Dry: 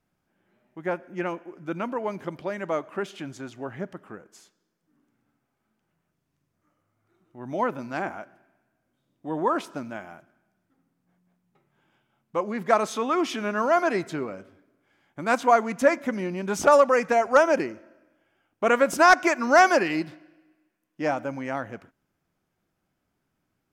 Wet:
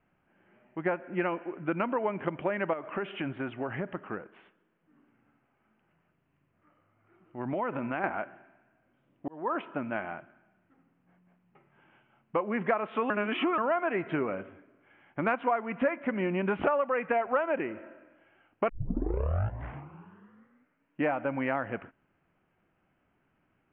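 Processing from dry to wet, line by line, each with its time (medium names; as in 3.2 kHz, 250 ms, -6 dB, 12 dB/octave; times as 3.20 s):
2.73–8.04 s: compression, threshold -32 dBFS
9.28–10.08 s: fade in
13.10–13.58 s: reverse
18.69 s: tape start 2.40 s
whole clip: steep low-pass 3 kHz 72 dB/octave; bass shelf 390 Hz -4 dB; compression 6:1, threshold -32 dBFS; trim +6.5 dB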